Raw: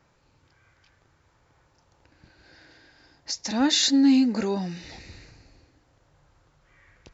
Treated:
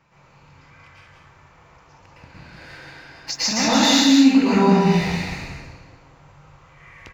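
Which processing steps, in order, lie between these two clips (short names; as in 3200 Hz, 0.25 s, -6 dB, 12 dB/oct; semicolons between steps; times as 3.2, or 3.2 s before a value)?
fifteen-band EQ 160 Hz +7 dB, 1000 Hz +7 dB, 2500 Hz +9 dB; sample leveller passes 1; compressor 4:1, threshold -25 dBFS, peak gain reduction 11.5 dB; on a send: echo 0.183 s -5 dB; on the sum: plate-style reverb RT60 1 s, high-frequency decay 0.6×, pre-delay 0.1 s, DRR -10 dB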